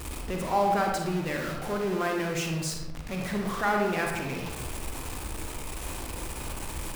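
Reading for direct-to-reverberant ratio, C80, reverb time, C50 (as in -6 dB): 1.0 dB, 5.5 dB, 1.1 s, 2.5 dB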